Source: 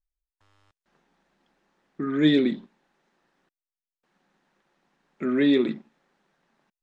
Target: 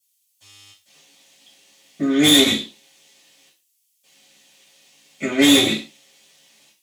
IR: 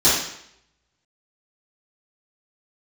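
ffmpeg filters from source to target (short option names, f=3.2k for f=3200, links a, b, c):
-filter_complex "[0:a]aexciter=amount=12.5:drive=6.1:freq=2.3k,aeval=exprs='(tanh(7.08*val(0)+0.6)-tanh(0.6))/7.08':c=same[a];[1:a]atrim=start_sample=2205,afade=t=out:st=0.36:d=0.01,atrim=end_sample=16317,asetrate=83790,aresample=44100[b];[a][b]afir=irnorm=-1:irlink=0,volume=-8.5dB"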